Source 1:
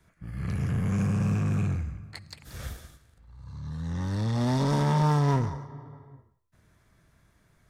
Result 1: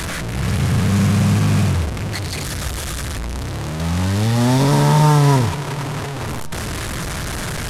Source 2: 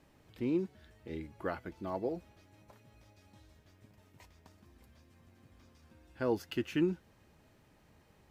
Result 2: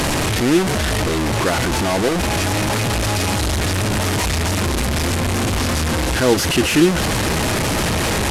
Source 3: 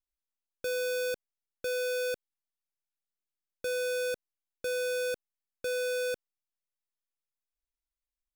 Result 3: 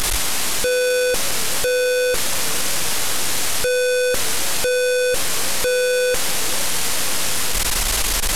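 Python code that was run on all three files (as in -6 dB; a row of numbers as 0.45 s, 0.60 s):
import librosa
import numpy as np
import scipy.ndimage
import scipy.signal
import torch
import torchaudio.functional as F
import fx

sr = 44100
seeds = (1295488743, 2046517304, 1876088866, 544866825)

y = fx.delta_mod(x, sr, bps=64000, step_db=-29.0)
y = fx.echo_warbled(y, sr, ms=488, feedback_pct=67, rate_hz=2.8, cents=191, wet_db=-21.0)
y = y * 10.0 ** (-18 / 20.0) / np.sqrt(np.mean(np.square(y)))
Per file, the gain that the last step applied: +10.5 dB, +16.5 dB, +17.0 dB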